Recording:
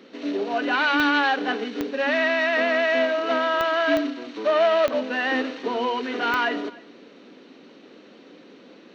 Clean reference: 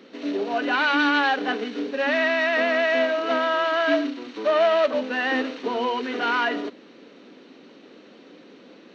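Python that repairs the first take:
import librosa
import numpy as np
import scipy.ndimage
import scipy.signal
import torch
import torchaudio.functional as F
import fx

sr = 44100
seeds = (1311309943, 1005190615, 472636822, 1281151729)

y = fx.fix_declick_ar(x, sr, threshold=10.0)
y = fx.fix_echo_inverse(y, sr, delay_ms=302, level_db=-23.0)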